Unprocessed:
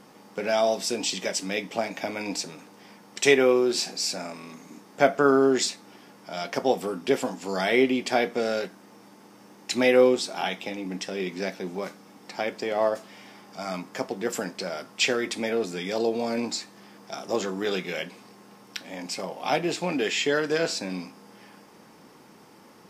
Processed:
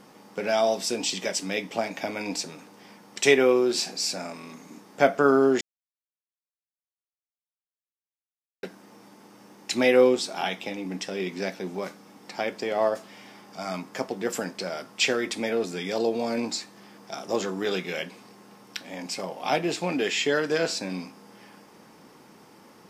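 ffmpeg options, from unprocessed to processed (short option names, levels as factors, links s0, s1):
-filter_complex "[0:a]asplit=3[s0][s1][s2];[s0]atrim=end=5.61,asetpts=PTS-STARTPTS,afade=t=out:st=5.606:d=0.004:c=hsin[s3];[s1]atrim=start=5.61:end=8.63,asetpts=PTS-STARTPTS,volume=0[s4];[s2]atrim=start=8.63,asetpts=PTS-STARTPTS,afade=t=in:d=0.004:c=hsin[s5];[s3][s4][s5]concat=n=3:v=0:a=1"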